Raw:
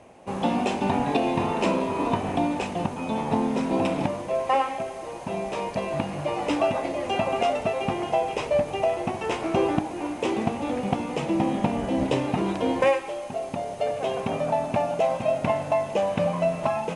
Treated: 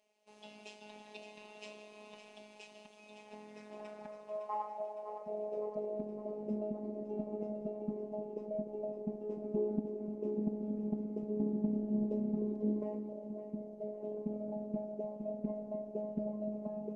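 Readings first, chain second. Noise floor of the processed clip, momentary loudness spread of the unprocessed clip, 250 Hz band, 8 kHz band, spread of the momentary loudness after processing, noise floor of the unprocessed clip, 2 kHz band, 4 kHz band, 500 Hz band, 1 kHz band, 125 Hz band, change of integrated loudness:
-58 dBFS, 5 LU, -11.0 dB, under -20 dB, 18 LU, -36 dBFS, under -25 dB, under -20 dB, -14.5 dB, -22.5 dB, -15.0 dB, -13.0 dB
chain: high-order bell 1.8 kHz -13.5 dB 2.3 oct; band-pass sweep 2.9 kHz -> 280 Hz, 3.03–6.41 s; two-band feedback delay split 650 Hz, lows 300 ms, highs 560 ms, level -10 dB; robot voice 211 Hz; trim -2.5 dB

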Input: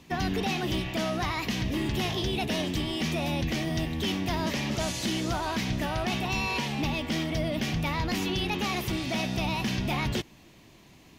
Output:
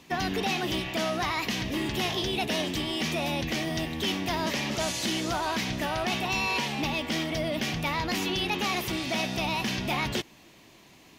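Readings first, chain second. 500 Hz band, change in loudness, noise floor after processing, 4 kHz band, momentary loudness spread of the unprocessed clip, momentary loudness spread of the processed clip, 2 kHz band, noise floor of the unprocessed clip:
+1.0 dB, +0.5 dB, -55 dBFS, +2.5 dB, 1 LU, 2 LU, +2.5 dB, -54 dBFS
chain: bass shelf 190 Hz -10.5 dB; trim +2.5 dB

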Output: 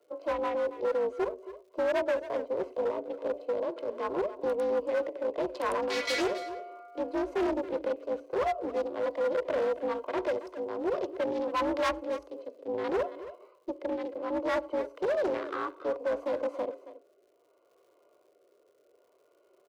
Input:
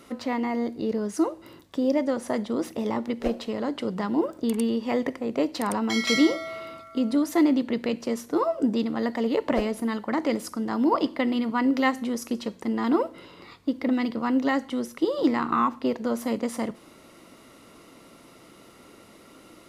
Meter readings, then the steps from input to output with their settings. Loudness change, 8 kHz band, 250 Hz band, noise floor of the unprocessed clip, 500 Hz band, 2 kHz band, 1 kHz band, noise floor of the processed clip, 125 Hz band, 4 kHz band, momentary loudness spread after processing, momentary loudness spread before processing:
-5.5 dB, -11.5 dB, -14.0 dB, -52 dBFS, 0.0 dB, -5.0 dB, -4.5 dB, -67 dBFS, under -10 dB, -8.0 dB, 8 LU, 7 LU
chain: local Wiener filter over 25 samples; high-pass 330 Hz 24 dB/octave; gate -52 dBFS, range -10 dB; treble shelf 3.7 kHz -6.5 dB; harmonic-percussive split percussive -11 dB; comb 2 ms, depth 44%; rotary cabinet horn 6 Hz, later 0.65 Hz, at 1.95 s; crackle 160 per s -65 dBFS; overload inside the chain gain 30 dB; frequency shift +52 Hz; delay 275 ms -14.5 dB; loudspeaker Doppler distortion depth 0.4 ms; trim +5 dB

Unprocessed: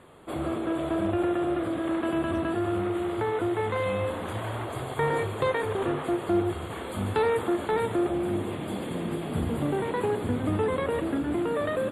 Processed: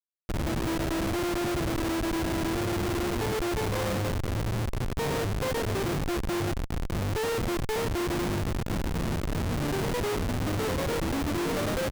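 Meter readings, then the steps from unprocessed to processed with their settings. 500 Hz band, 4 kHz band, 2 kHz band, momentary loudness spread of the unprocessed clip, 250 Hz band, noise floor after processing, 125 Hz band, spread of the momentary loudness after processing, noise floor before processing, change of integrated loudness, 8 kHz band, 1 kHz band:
-3.5 dB, +6.0 dB, +0.5 dB, 6 LU, -2.0 dB, -32 dBFS, +3.0 dB, 2 LU, -35 dBFS, -1.0 dB, +10.0 dB, -2.5 dB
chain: echo from a far wall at 140 m, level -17 dB; Schmitt trigger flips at -27.5 dBFS

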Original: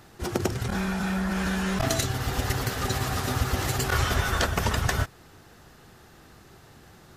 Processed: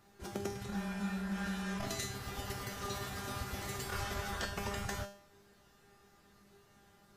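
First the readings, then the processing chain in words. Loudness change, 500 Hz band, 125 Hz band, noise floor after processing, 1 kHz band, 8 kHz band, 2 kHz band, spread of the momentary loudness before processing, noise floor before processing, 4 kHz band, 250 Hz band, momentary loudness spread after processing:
-12.5 dB, -11.5 dB, -15.0 dB, -65 dBFS, -12.0 dB, -12.0 dB, -12.5 dB, 4 LU, -53 dBFS, -12.0 dB, -10.5 dB, 4 LU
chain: feedback comb 200 Hz, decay 0.48 s, harmonics all, mix 90%; trim +1 dB

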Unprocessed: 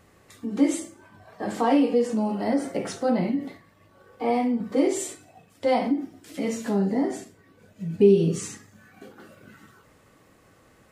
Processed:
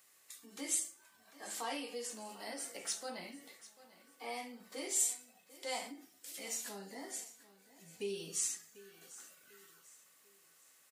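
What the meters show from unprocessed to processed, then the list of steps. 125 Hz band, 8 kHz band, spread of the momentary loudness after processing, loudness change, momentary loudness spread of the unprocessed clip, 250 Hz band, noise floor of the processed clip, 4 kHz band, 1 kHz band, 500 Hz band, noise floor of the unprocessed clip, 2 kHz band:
-30.0 dB, +2.0 dB, 22 LU, -15.0 dB, 15 LU, -27.0 dB, -67 dBFS, -4.0 dB, -17.0 dB, -22.0 dB, -58 dBFS, -9.5 dB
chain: differentiator; on a send: feedback delay 744 ms, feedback 40%, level -18 dB; on the sum: trim +1.5 dB

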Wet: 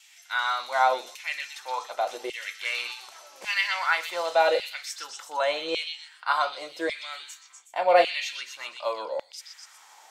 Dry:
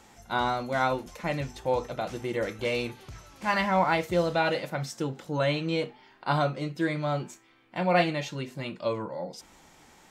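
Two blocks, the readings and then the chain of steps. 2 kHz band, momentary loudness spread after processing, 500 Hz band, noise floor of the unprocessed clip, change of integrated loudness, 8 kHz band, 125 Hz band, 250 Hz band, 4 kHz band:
+4.0 dB, 15 LU, +1.0 dB, -57 dBFS, +1.5 dB, +5.5 dB, under -30 dB, -13.5 dB, +5.5 dB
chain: gate with hold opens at -50 dBFS; tone controls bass -10 dB, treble +4 dB; LFO high-pass saw down 0.87 Hz 470–2900 Hz; on a send: repeats whose band climbs or falls 123 ms, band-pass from 3.9 kHz, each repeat 0.7 oct, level -2 dB

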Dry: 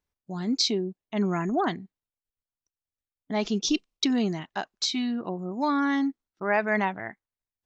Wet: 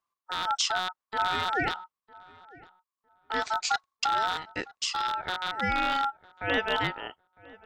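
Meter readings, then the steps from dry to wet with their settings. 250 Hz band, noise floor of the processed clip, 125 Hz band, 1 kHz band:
-14.5 dB, under -85 dBFS, -8.0 dB, +4.0 dB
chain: rattle on loud lows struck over -33 dBFS, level -18 dBFS; peaking EQ 66 Hz +8.5 dB 0.86 oct; ring modulator 1.1 kHz; filtered feedback delay 955 ms, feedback 21%, low-pass 1.5 kHz, level -21 dB

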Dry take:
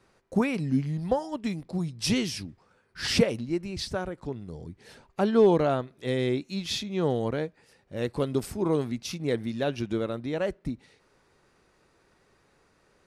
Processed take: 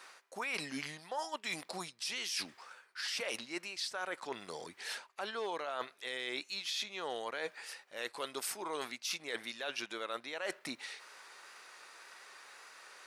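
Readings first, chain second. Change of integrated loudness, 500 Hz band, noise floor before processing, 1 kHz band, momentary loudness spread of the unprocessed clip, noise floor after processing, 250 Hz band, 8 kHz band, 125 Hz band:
-11.0 dB, -15.5 dB, -66 dBFS, -6.5 dB, 13 LU, -66 dBFS, -21.0 dB, -3.0 dB, -28.5 dB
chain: high-pass 1.1 kHz 12 dB/octave; peak limiter -27.5 dBFS, peak gain reduction 10.5 dB; reverse; compression 6:1, threshold -52 dBFS, peak gain reduction 18 dB; reverse; wow and flutter 27 cents; trim +15 dB

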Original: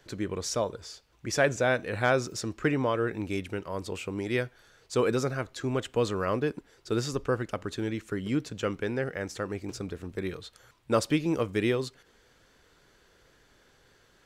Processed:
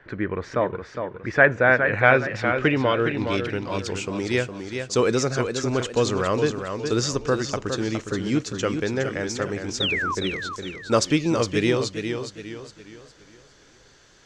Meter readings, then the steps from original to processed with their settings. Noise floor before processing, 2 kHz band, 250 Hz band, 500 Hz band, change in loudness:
-63 dBFS, +11.0 dB, +6.0 dB, +6.0 dB, +7.0 dB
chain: painted sound fall, 9.80–10.15 s, 960–3900 Hz -31 dBFS; low-pass sweep 1.8 kHz -> 6.4 kHz, 1.67–3.95 s; modulated delay 412 ms, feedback 39%, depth 71 cents, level -7 dB; trim +5 dB

